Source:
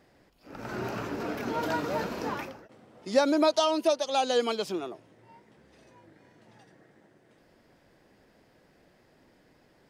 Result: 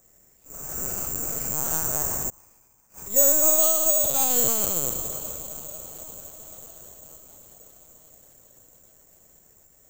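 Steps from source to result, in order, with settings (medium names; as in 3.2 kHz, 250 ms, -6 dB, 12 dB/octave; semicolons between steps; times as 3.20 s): spectral sustain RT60 2.03 s; bass shelf 410 Hz +4 dB; hum notches 60/120/180/240/300/360 Hz; echo that smears into a reverb 473 ms, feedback 68%, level -14.5 dB; 2.29–3.11 s: inverted gate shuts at -25 dBFS, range -26 dB; LPC vocoder at 8 kHz pitch kept; careless resampling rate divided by 6×, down none, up zero stuff; trim -8.5 dB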